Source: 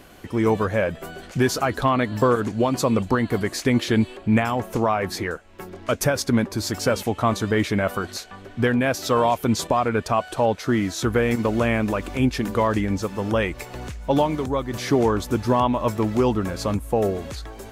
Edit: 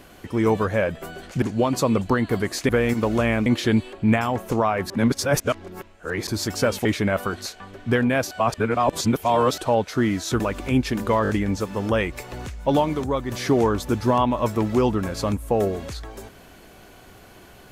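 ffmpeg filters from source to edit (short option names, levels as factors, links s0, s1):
-filter_complex "[0:a]asplit=13[s0][s1][s2][s3][s4][s5][s6][s7][s8][s9][s10][s11][s12];[s0]atrim=end=1.422[s13];[s1]atrim=start=2.428:end=3.702[s14];[s2]atrim=start=11.108:end=11.882[s15];[s3]atrim=start=3.698:end=5.142[s16];[s4]atrim=start=5.138:end=6.512,asetpts=PTS-STARTPTS,areverse[s17];[s5]atrim=start=6.508:end=7.092[s18];[s6]atrim=start=7.558:end=9.022[s19];[s7]atrim=start=9.018:end=10.292,asetpts=PTS-STARTPTS,areverse[s20];[s8]atrim=start=10.288:end=11.112[s21];[s9]atrim=start=11.878:end=12.732[s22];[s10]atrim=start=12.708:end=12.732[s23];[s11]atrim=start=12.708:end=12.732[s24];[s12]atrim=start=12.708[s25];[s13][s14]acrossfade=d=0.004:c1=hsin:c2=hsin[s26];[s26][s15]acrossfade=d=0.004:c1=hsin:c2=hsin[s27];[s27][s16]acrossfade=d=0.004:c1=hsin:c2=hsin[s28];[s28][s17]acrossfade=d=0.004:c1=hsin:c2=hsin[s29];[s29][s18]acrossfade=d=0.004:c1=hsin:c2=hsin[s30];[s30][s19]acrossfade=d=0.004:c1=hsin:c2=hsin[s31];[s31][s20]acrossfade=d=0.004:c1=hsin:c2=hsin[s32];[s32][s21]acrossfade=d=0.004:c1=hsin:c2=hsin[s33];[s33][s22]acrossfade=d=0.004:c1=hsin:c2=hsin[s34];[s34][s23]acrossfade=d=0.004:c1=hsin:c2=hsin[s35];[s35][s24]acrossfade=d=0.004:c1=hsin:c2=hsin[s36];[s36][s25]acrossfade=d=0.004:c1=hsin:c2=hsin"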